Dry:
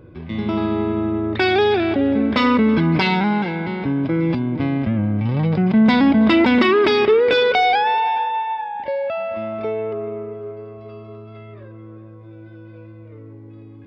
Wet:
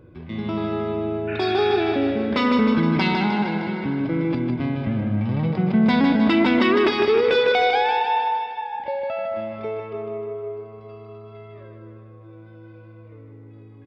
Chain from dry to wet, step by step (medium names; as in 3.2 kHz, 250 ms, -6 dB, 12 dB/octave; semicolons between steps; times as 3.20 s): spectral replace 1.31–1.73 s, 1.3–3.1 kHz after; feedback delay 154 ms, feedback 56%, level -5.5 dB; endings held to a fixed fall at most 190 dB/s; trim -4.5 dB